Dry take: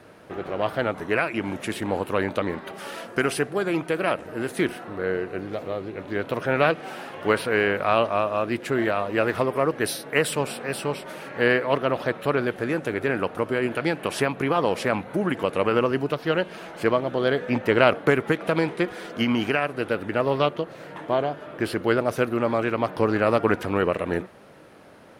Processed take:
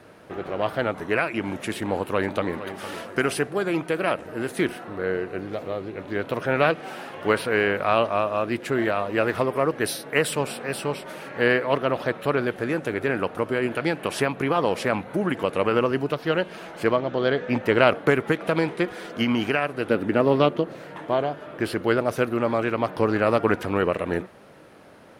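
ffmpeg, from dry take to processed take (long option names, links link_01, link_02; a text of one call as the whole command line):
ffmpeg -i in.wav -filter_complex "[0:a]asplit=2[link_01][link_02];[link_02]afade=type=in:start_time=1.77:duration=0.01,afade=type=out:start_time=2.56:duration=0.01,aecho=0:1:460|920|1380|1840:0.237137|0.0829981|0.0290493|0.0101673[link_03];[link_01][link_03]amix=inputs=2:normalize=0,asplit=3[link_04][link_05][link_06];[link_04]afade=type=out:start_time=16.96:duration=0.02[link_07];[link_05]lowpass=frequency=6900:width=0.5412,lowpass=frequency=6900:width=1.3066,afade=type=in:start_time=16.96:duration=0.02,afade=type=out:start_time=17.48:duration=0.02[link_08];[link_06]afade=type=in:start_time=17.48:duration=0.02[link_09];[link_07][link_08][link_09]amix=inputs=3:normalize=0,asettb=1/sr,asplit=3[link_10][link_11][link_12];[link_10]atrim=end=19.884[link_13];[link_11]atrim=start=19.88:end=20.79,asetpts=PTS-STARTPTS,afade=type=in:duration=0.004:curve=qsin,afade=type=out:start_time=0.906:duration=0.004:curve=qsin,equalizer=frequency=260:width_type=o:width=1.6:gain=7.5[link_14];[link_12]atrim=start=20.786[link_15];[link_13][link_14]acrossfade=duration=0.004:curve1=hsin:curve2=qsin[link_16];[link_16][link_15]acrossfade=duration=0.004:curve1=qsin:curve2=hsin" out.wav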